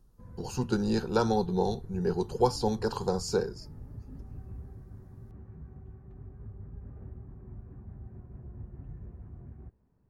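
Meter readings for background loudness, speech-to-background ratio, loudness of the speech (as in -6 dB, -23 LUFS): -47.0 LUFS, 17.0 dB, -30.0 LUFS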